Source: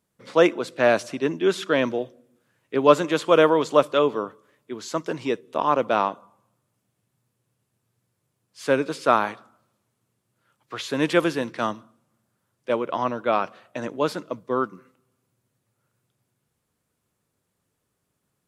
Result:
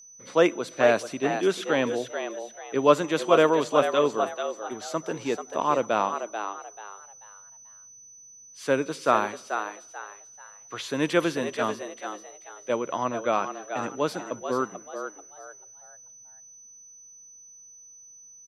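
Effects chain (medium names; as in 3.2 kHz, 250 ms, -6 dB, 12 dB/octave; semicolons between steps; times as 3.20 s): frequency-shifting echo 438 ms, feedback 30%, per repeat +99 Hz, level -8 dB; whistle 6 kHz -44 dBFS; trim -3 dB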